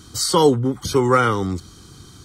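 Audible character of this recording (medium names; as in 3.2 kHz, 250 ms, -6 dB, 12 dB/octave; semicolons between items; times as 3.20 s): noise floor -45 dBFS; spectral tilt -4.5 dB/octave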